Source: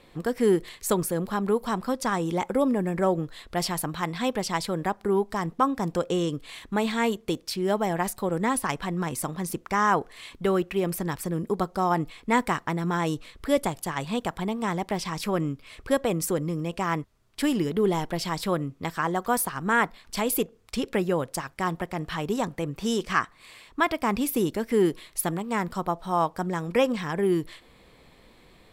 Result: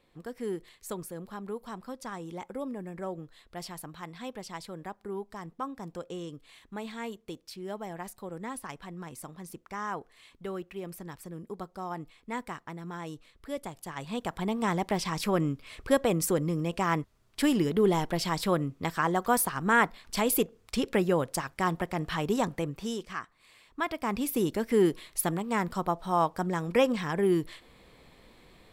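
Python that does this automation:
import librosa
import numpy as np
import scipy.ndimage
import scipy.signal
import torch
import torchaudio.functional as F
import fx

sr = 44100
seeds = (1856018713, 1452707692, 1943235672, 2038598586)

y = fx.gain(x, sr, db=fx.line((13.61, -13.0), (14.57, -0.5), (22.56, -0.5), (23.17, -13.0), (24.58, -1.5)))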